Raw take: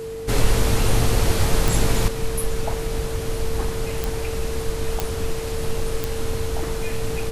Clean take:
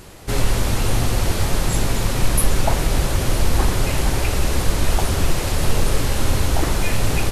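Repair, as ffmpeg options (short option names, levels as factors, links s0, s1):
-af "adeclick=t=4,bandreject=f=49.4:t=h:w=4,bandreject=f=98.8:t=h:w=4,bandreject=f=148.2:t=h:w=4,bandreject=f=197.6:t=h:w=4,bandreject=f=247:t=h:w=4,bandreject=f=296.4:t=h:w=4,bandreject=f=450:w=30,asetnsamples=n=441:p=0,asendcmd='2.08 volume volume 8dB',volume=1"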